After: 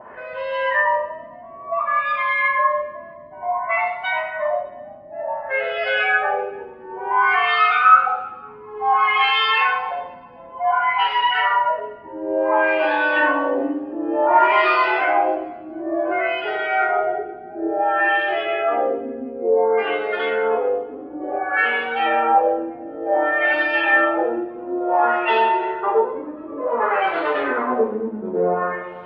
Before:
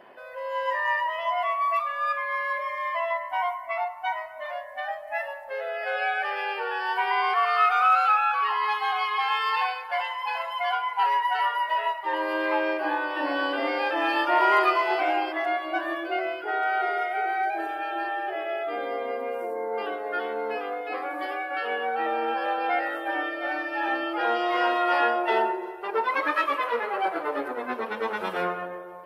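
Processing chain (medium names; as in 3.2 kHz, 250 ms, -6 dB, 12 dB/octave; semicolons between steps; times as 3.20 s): in parallel at -3 dB: compressor with a negative ratio -29 dBFS, ratio -1; on the sum: band noise 39–410 Hz -59 dBFS; LFO low-pass sine 0.56 Hz 250–3500 Hz; two-slope reverb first 0.48 s, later 1.5 s, from -16 dB, DRR -0.5 dB; trim -1 dB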